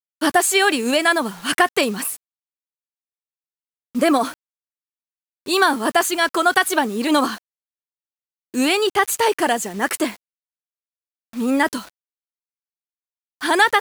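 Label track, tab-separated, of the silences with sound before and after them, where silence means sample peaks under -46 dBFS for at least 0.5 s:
2.170000	3.950000	silence
4.340000	5.460000	silence
7.380000	8.540000	silence
10.170000	11.330000	silence
11.900000	13.410000	silence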